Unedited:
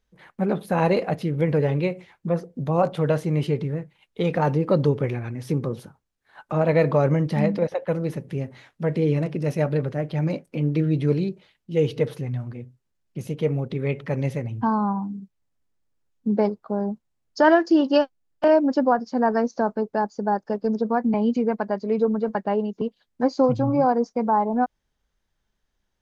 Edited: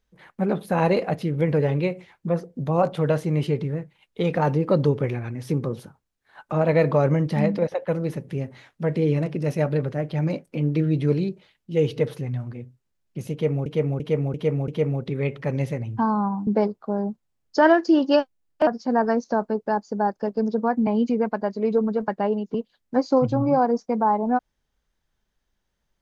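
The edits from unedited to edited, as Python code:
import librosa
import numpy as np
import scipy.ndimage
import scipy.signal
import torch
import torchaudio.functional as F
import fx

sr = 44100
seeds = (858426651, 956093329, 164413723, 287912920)

y = fx.edit(x, sr, fx.repeat(start_s=13.32, length_s=0.34, count=5),
    fx.cut(start_s=15.11, length_s=1.18),
    fx.cut(start_s=18.49, length_s=0.45), tone=tone)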